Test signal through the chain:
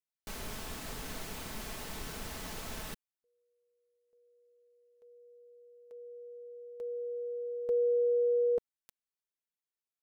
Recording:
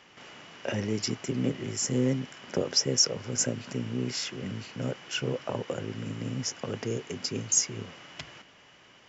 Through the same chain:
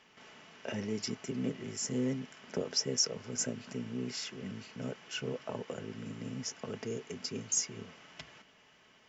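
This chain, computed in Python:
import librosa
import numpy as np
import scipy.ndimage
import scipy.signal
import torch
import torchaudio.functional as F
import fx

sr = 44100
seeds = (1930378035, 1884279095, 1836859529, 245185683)

y = x + 0.35 * np.pad(x, (int(4.6 * sr / 1000.0), 0))[:len(x)]
y = y * librosa.db_to_amplitude(-7.0)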